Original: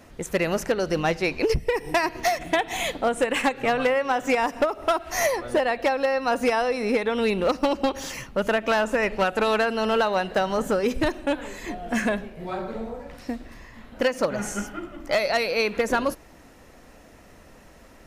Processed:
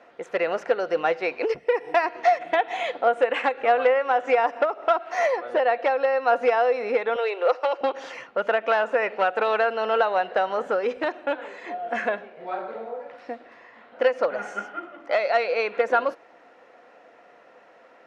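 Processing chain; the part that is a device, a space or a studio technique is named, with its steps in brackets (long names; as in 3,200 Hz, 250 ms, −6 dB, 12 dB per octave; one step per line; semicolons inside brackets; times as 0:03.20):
tin-can telephone (band-pass filter 480–2,600 Hz; hollow resonant body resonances 500/710/1,400 Hz, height 7 dB)
0:07.16–0:07.81: Butterworth high-pass 370 Hz 48 dB per octave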